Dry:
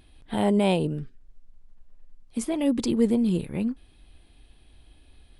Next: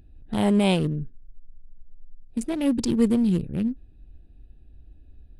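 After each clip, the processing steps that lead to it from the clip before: local Wiener filter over 41 samples; peaking EQ 560 Hz -6.5 dB 2.9 oct; trim +6 dB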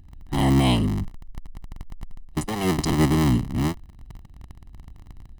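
cycle switcher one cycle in 3, inverted; comb 1 ms, depth 66%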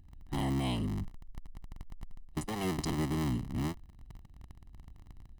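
compression 4:1, threshold -21 dBFS, peak gain reduction 6 dB; trim -8.5 dB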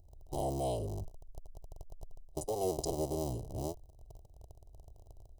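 FFT filter 110 Hz 0 dB, 240 Hz -13 dB, 440 Hz +12 dB, 630 Hz +14 dB, 1.7 kHz -30 dB, 2.9 kHz -10 dB, 5.9 kHz +5 dB; trim -3 dB

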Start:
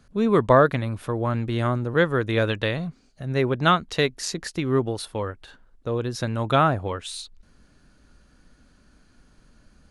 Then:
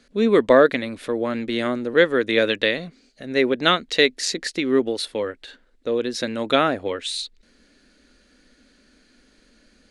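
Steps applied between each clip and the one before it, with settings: graphic EQ 125/250/500/1000/2000/4000/8000 Hz -12/+11/+10/-3/+12/+11/+8 dB; trim -6.5 dB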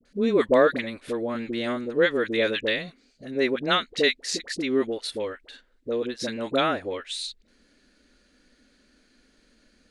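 phase dispersion highs, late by 54 ms, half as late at 750 Hz; trim -4.5 dB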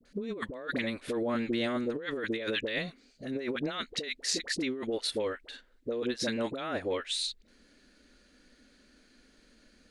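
compressor with a negative ratio -29 dBFS, ratio -1; trim -4 dB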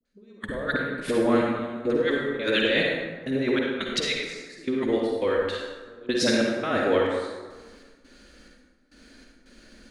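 trance gate "....xxx..xxxx" 138 bpm -24 dB; reverberation RT60 1.4 s, pre-delay 43 ms, DRR -1.5 dB; trim +7 dB

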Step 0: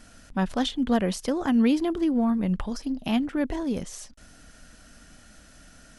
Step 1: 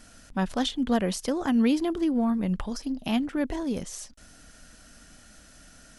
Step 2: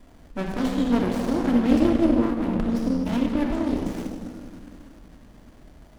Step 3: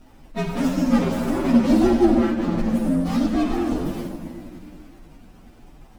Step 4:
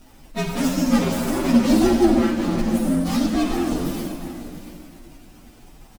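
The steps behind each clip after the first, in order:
tone controls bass -1 dB, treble +3 dB; trim -1 dB
simulated room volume 3400 m³, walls mixed, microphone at 3 m; sliding maximum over 33 samples
frequency axis rescaled in octaves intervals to 120%; trim +5.5 dB
treble shelf 3.4 kHz +10.5 dB; delay 693 ms -14.5 dB

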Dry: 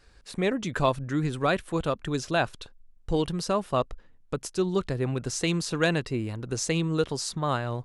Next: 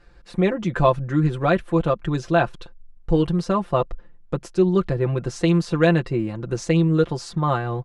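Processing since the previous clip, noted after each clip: low-pass 1.5 kHz 6 dB/octave; comb 5.8 ms, depth 70%; trim +5 dB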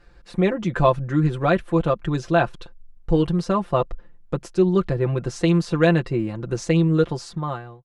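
fade out at the end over 0.76 s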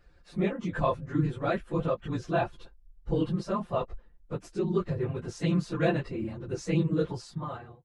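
phase randomisation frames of 50 ms; trim -9 dB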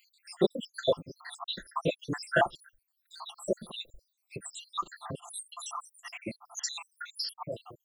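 random holes in the spectrogram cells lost 84%; RIAA curve recording; trim +9 dB

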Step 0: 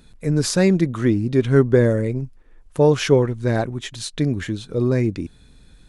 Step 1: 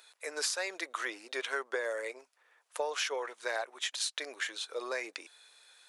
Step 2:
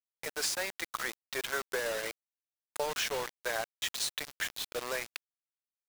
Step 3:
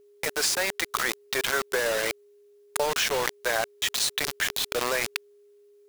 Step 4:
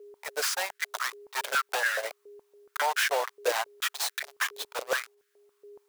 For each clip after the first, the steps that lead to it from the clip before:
Bessel high-pass 920 Hz, order 6; compression 12:1, threshold -31 dBFS, peak gain reduction 11 dB; trim +1 dB
bit crusher 6-bit
in parallel at +1 dB: compressor with a negative ratio -45 dBFS, ratio -1; on the sum: whistle 410 Hz -60 dBFS; trim +6 dB
integer overflow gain 24 dB; step-sequenced high-pass 7.1 Hz 460–1600 Hz

